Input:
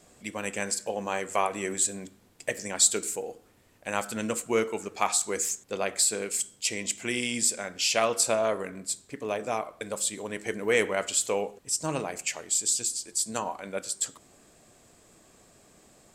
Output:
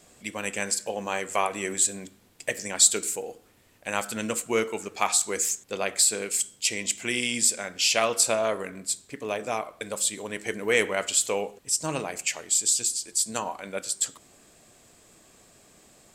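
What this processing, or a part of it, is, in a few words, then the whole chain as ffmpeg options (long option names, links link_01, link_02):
presence and air boost: -af "equalizer=frequency=3000:width_type=o:width=1.8:gain=3.5,highshelf=frequency=9100:gain=5.5"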